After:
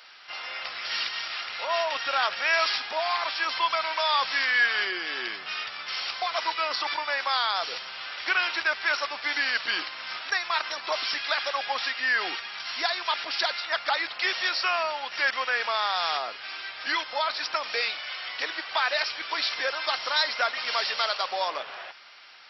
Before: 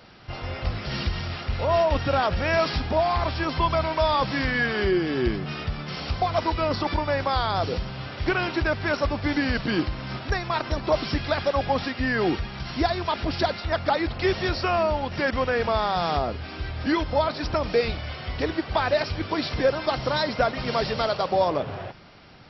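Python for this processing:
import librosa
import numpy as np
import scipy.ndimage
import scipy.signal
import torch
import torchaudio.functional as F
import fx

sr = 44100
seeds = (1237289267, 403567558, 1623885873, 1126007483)

y = scipy.signal.sosfilt(scipy.signal.butter(2, 1400.0, 'highpass', fs=sr, output='sos'), x)
y = y * 10.0 ** (5.0 / 20.0)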